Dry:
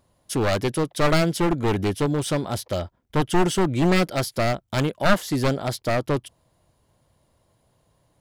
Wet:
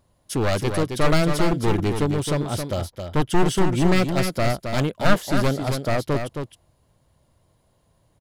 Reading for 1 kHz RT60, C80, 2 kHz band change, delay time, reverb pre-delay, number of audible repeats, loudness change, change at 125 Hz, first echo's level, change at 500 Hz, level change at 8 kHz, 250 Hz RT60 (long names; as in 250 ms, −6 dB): no reverb audible, no reverb audible, 0.0 dB, 268 ms, no reverb audible, 1, +0.5 dB, +2.0 dB, −6.5 dB, 0.0 dB, 0.0 dB, no reverb audible